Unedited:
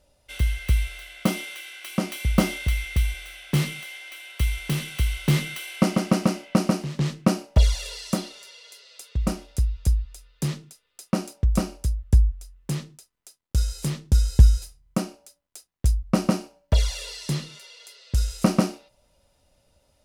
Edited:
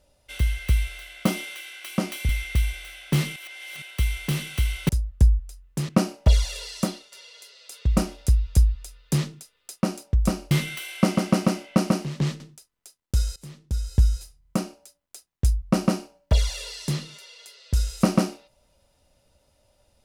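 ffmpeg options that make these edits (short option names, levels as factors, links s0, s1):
-filter_complex "[0:a]asplit=12[s0][s1][s2][s3][s4][s5][s6][s7][s8][s9][s10][s11];[s0]atrim=end=2.292[s12];[s1]atrim=start=2.698:end=3.772[s13];[s2]atrim=start=3.768:end=4.232,asetpts=PTS-STARTPTS,areverse[s14];[s3]atrim=start=4.228:end=5.302[s15];[s4]atrim=start=11.808:end=12.812[s16];[s5]atrim=start=7.188:end=8.42,asetpts=PTS-STARTPTS,afade=t=out:st=0.962:d=0.27:silence=0.251189[s17];[s6]atrim=start=8.42:end=9.022,asetpts=PTS-STARTPTS,afade=t=in:d=0.004:c=hsin:silence=0.251189[s18];[s7]atrim=start=9.018:end=11.062,asetpts=PTS-STARTPTS,volume=1.5[s19];[s8]atrim=start=11.058:end=11.812[s20];[s9]atrim=start=5.298:end=7.192[s21];[s10]atrim=start=12.808:end=13.77,asetpts=PTS-STARTPTS,afade=t=out:st=0.958:d=0.004:c=hsin:silence=0.112202[s22];[s11]atrim=start=13.77,asetpts=PTS-STARTPTS,afade=t=in:d=1.26:silence=0.112202[s23];[s12][s13]acrossfade=d=0.004:c1=hsin:c2=hsin[s24];[s24][s14]acrossfade=d=0.004:c1=hsin:c2=hsin[s25];[s25][s15]acrossfade=d=0.004:c1=hsin:c2=hsin[s26];[s26][s16]acrossfade=d=0.004:c1=hsin:c2=hsin[s27];[s17][s18]concat=n=2:v=0:a=1[s28];[s27][s28]acrossfade=d=0.004:c1=hsin:c2=hsin[s29];[s29][s19]acrossfade=d=0.004:c1=hsin:c2=hsin[s30];[s30][s20]acrossfade=d=0.004:c1=hsin:c2=hsin[s31];[s31][s21]acrossfade=d=0.004:c1=hsin:c2=hsin[s32];[s22][s23]concat=n=2:v=0:a=1[s33];[s32][s33]acrossfade=d=0.004:c1=hsin:c2=hsin"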